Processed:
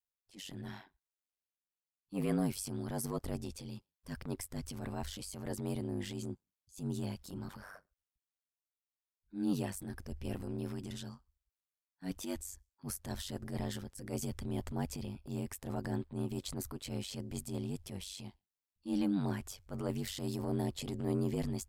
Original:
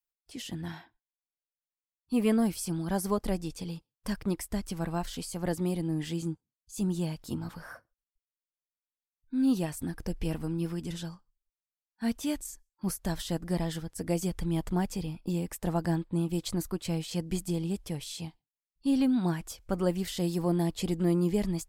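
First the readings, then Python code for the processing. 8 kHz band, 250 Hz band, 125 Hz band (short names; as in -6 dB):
-5.0 dB, -8.5 dB, -7.0 dB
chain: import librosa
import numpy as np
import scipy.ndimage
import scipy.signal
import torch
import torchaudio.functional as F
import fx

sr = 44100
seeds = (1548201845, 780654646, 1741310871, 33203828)

y = x * np.sin(2.0 * np.pi * 48.0 * np.arange(len(x)) / sr)
y = fx.transient(y, sr, attack_db=-10, sustain_db=3)
y = y * 10.0 ** (-3.0 / 20.0)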